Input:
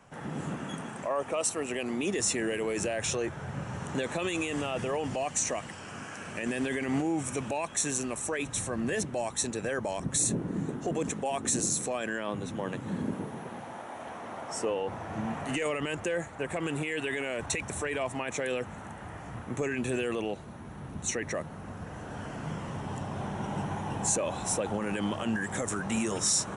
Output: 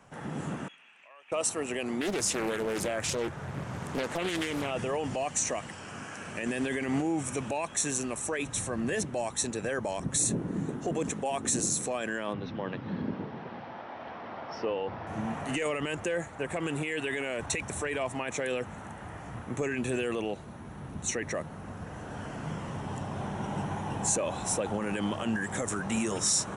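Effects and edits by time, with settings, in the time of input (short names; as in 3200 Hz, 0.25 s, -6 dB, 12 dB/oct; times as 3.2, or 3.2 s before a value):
0.68–1.32 band-pass 2600 Hz, Q 5.8
2.01–4.71 Doppler distortion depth 0.78 ms
12.33–15.07 elliptic low-pass 5100 Hz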